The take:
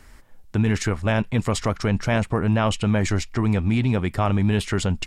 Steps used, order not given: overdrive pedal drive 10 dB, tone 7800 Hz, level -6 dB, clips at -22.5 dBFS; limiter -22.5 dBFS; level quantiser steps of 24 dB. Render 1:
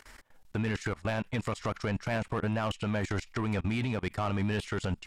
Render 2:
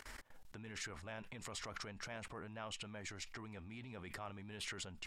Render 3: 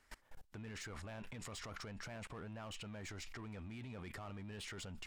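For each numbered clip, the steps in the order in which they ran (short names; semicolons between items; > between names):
level quantiser > overdrive pedal > limiter; limiter > level quantiser > overdrive pedal; overdrive pedal > limiter > level quantiser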